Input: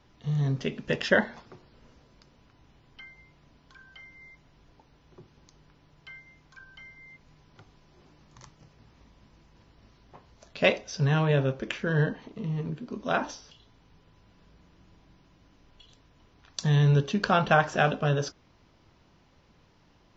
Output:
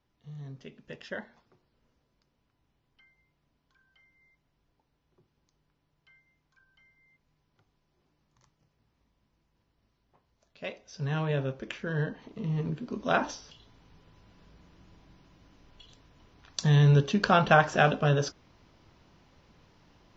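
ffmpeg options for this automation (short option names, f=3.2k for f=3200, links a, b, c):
-af "volume=1dB,afade=t=in:st=10.76:d=0.43:silence=0.298538,afade=t=in:st=12.12:d=0.45:silence=0.473151"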